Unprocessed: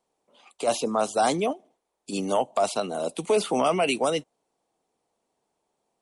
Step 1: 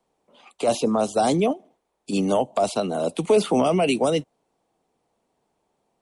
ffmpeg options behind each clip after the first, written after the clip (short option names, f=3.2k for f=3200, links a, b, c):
-filter_complex "[0:a]bass=f=250:g=5,treble=f=4k:g=-5,acrossover=split=170|740|3000[a][b][c][d];[c]acompressor=threshold=-36dB:ratio=6[e];[a][b][e][d]amix=inputs=4:normalize=0,volume=4.5dB"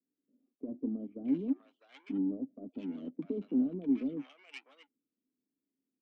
-filter_complex "[0:a]asplit=3[a][b][c];[a]bandpass=f=270:t=q:w=8,volume=0dB[d];[b]bandpass=f=2.29k:t=q:w=8,volume=-6dB[e];[c]bandpass=f=3.01k:t=q:w=8,volume=-9dB[f];[d][e][f]amix=inputs=3:normalize=0,adynamicsmooth=sensitivity=2.5:basefreq=830,acrossover=split=870[g][h];[h]adelay=650[i];[g][i]amix=inputs=2:normalize=0,volume=-1.5dB"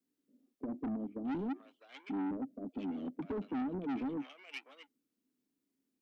-af "asoftclip=type=tanh:threshold=-37.5dB,volume=4dB"